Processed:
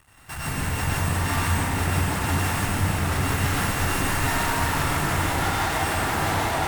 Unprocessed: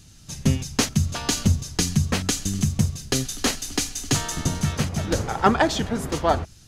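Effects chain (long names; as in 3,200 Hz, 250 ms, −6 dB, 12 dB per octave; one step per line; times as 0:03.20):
samples sorted by size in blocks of 16 samples
drawn EQ curve 100 Hz 0 dB, 210 Hz −8 dB, 350 Hz +2 dB, 530 Hz −4 dB, 760 Hz +12 dB, 1,900 Hz +12 dB, 4,400 Hz −27 dB, 6,900 Hz +4 dB, 13,000 Hz −5 dB
on a send: echo whose low-pass opens from repeat to repeat 399 ms, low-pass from 200 Hz, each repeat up 2 octaves, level −3 dB
on the sum: downward compressor 2.5 to 1, threshold −31 dBFS, peak gain reduction 18 dB
high-shelf EQ 8,100 Hz +4 dB
fuzz pedal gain 45 dB, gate −49 dBFS
downward expander −4 dBFS
dense smooth reverb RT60 2.8 s, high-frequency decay 0.75×, pre-delay 80 ms, DRR −8.5 dB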